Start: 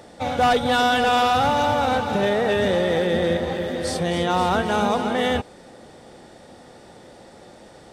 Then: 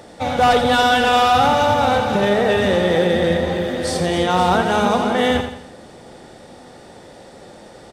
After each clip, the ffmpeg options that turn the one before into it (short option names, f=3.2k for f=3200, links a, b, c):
-af "aecho=1:1:84|168|252|336|420:0.398|0.171|0.0736|0.0317|0.0136,volume=3.5dB"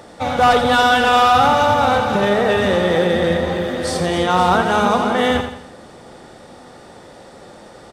-af "equalizer=f=1.2k:t=o:w=0.62:g=5"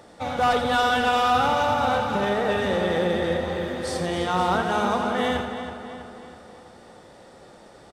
-filter_complex "[0:a]asplit=2[a][b];[b]adelay=325,lowpass=f=4.6k:p=1,volume=-9.5dB,asplit=2[c][d];[d]adelay=325,lowpass=f=4.6k:p=1,volume=0.53,asplit=2[e][f];[f]adelay=325,lowpass=f=4.6k:p=1,volume=0.53,asplit=2[g][h];[h]adelay=325,lowpass=f=4.6k:p=1,volume=0.53,asplit=2[i][j];[j]adelay=325,lowpass=f=4.6k:p=1,volume=0.53,asplit=2[k][l];[l]adelay=325,lowpass=f=4.6k:p=1,volume=0.53[m];[a][c][e][g][i][k][m]amix=inputs=7:normalize=0,volume=-8dB"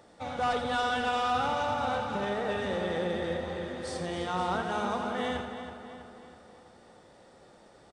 -af "aresample=22050,aresample=44100,volume=-8dB"